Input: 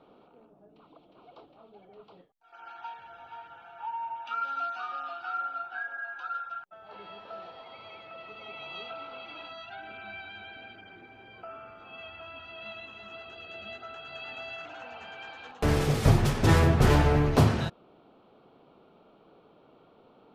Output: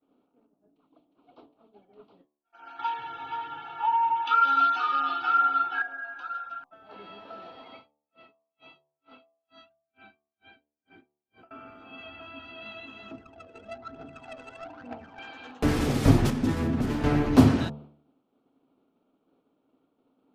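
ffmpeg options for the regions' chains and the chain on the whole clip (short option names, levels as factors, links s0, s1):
-filter_complex "[0:a]asettb=1/sr,asplit=3[s0][s1][s2];[s0]atrim=end=2.794[s3];[s1]atrim=start=2.79:end=5.82,asetpts=PTS-STARTPTS,afade=t=in:d=0.004:c=qsin,afade=t=out:st=3.026:d=0.004:c=qsin,aecho=1:1:2.3:0.92,atrim=end_sample=133623,acontrast=67,highpass=110,equalizer=f=150:t=q:w=4:g=9,equalizer=f=590:t=q:w=4:g=-8,equalizer=f=3400:t=q:w=4:g=7,lowpass=f=6200:w=0.5412,lowpass=f=6200:w=1.3066[s4];[s2]atrim=start=5.816[s5];[s3][s4]acrossfade=d=0.004:c1=hsin:c2=qsin[s6];[s6][s5]acrossfade=d=0.004:c1=qsin:c2=hsin,asettb=1/sr,asplit=3[s7][s8][s9];[s7]atrim=end=7.764[s10];[s8]atrim=start=7.76:end=11.51,asetpts=PTS-STARTPTS,afade=t=in:d=0.004:c=qsin,afade=t=out:st=3.746:d=0.004:c=qsin,acompressor=threshold=0.00501:ratio=4:attack=3.2:release=140:knee=1:detection=peak,aeval=exprs='val(0)*pow(10,-30*(0.5-0.5*cos(2*PI*2.2*n/s))/20)':c=same[s11];[s9]atrim=start=11.506[s12];[s10][s11]acrossfade=d=0.004:c1=hsin:c2=qsin[s13];[s13][s12]acrossfade=d=0.004:c1=qsin:c2=hsin,asettb=1/sr,asplit=3[s14][s15][s16];[s14]atrim=end=13.114[s17];[s15]atrim=start=13.11:end=15.19,asetpts=PTS-STARTPTS,afade=t=in:d=0.004:c=qsin,afade=t=out:st=2.076:d=0.004:c=qsin,highpass=61,aphaser=in_gain=1:out_gain=1:delay=2.3:decay=0.7:speed=1.1:type=triangular,adynamicsmooth=sensitivity=3:basefreq=680[s18];[s16]atrim=start=15.186[s19];[s17][s18]acrossfade=d=0.004:c1=hsin:c2=qsin[s20];[s20][s19]acrossfade=d=0.004:c1=qsin:c2=hsin,asettb=1/sr,asplit=3[s21][s22][s23];[s21]atrim=end=16.304[s24];[s22]atrim=start=16.3:end=17.04,asetpts=PTS-STARTPTS,afade=t=in:d=0.004:c=qsin,afade=t=out:st=0.736:d=0.004:c=qsin,agate=range=0.501:threshold=0.112:ratio=16:release=100:detection=peak,equalizer=f=220:w=3.3:g=9,acompressor=threshold=0.0631:ratio=12:attack=3.2:release=140:knee=1:detection=peak[s25];[s23]atrim=start=17.036[s26];[s24][s25]acrossfade=d=0.004:c1=hsin:c2=qsin[s27];[s27][s26]acrossfade=d=0.004:c1=qsin:c2=hsin,agate=range=0.0224:threshold=0.00447:ratio=3:detection=peak,equalizer=f=270:w=3.4:g=14,bandreject=f=73.53:t=h:w=4,bandreject=f=147.06:t=h:w=4,bandreject=f=220.59:t=h:w=4,bandreject=f=294.12:t=h:w=4,bandreject=f=367.65:t=h:w=4,bandreject=f=441.18:t=h:w=4,bandreject=f=514.71:t=h:w=4,bandreject=f=588.24:t=h:w=4,bandreject=f=661.77:t=h:w=4,bandreject=f=735.3:t=h:w=4,bandreject=f=808.83:t=h:w=4,bandreject=f=882.36:t=h:w=4,bandreject=f=955.89:t=h:w=4,bandreject=f=1029.42:t=h:w=4,bandreject=f=1102.95:t=h:w=4,bandreject=f=1176.48:t=h:w=4"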